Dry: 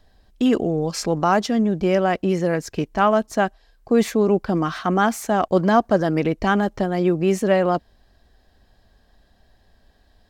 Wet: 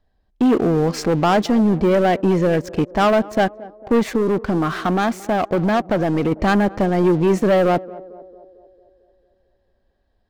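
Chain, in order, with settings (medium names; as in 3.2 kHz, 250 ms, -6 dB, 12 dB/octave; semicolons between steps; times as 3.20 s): treble shelf 3.7 kHz -12 dB; waveshaping leveller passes 3; 3.99–6.32 s: compression 2:1, threshold -14 dBFS, peak gain reduction 3.5 dB; band-passed feedback delay 224 ms, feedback 61%, band-pass 470 Hz, level -18 dB; trim -4 dB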